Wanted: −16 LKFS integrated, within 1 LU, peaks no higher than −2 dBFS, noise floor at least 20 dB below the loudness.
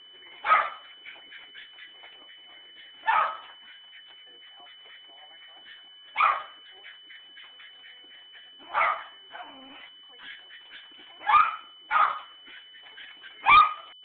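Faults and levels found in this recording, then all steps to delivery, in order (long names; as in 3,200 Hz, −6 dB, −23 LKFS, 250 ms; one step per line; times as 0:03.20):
interfering tone 3,000 Hz; level of the tone −48 dBFS; integrated loudness −24.0 LKFS; sample peak −8.0 dBFS; target loudness −16.0 LKFS
→ notch filter 3,000 Hz, Q 30
level +8 dB
brickwall limiter −2 dBFS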